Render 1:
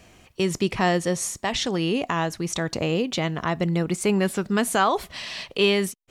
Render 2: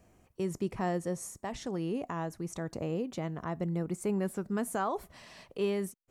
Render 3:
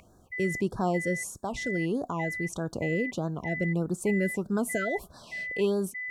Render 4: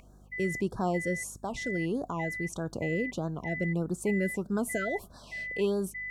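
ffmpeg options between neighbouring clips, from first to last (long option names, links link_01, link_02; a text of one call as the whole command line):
ffmpeg -i in.wav -af "equalizer=frequency=3400:width_type=o:width=1.9:gain=-14,volume=-9dB" out.wav
ffmpeg -i in.wav -af "aeval=exprs='val(0)+0.0141*sin(2*PI*2000*n/s)':channel_layout=same,afftfilt=real='re*(1-between(b*sr/1024,940*pow(2500/940,0.5+0.5*sin(2*PI*1.6*pts/sr))/1.41,940*pow(2500/940,0.5+0.5*sin(2*PI*1.6*pts/sr))*1.41))':imag='im*(1-between(b*sr/1024,940*pow(2500/940,0.5+0.5*sin(2*PI*1.6*pts/sr))/1.41,940*pow(2500/940,0.5+0.5*sin(2*PI*1.6*pts/sr))*1.41))':win_size=1024:overlap=0.75,volume=4.5dB" out.wav
ffmpeg -i in.wav -af "aeval=exprs='val(0)+0.00224*(sin(2*PI*50*n/s)+sin(2*PI*2*50*n/s)/2+sin(2*PI*3*50*n/s)/3+sin(2*PI*4*50*n/s)/4+sin(2*PI*5*50*n/s)/5)':channel_layout=same,volume=-2dB" out.wav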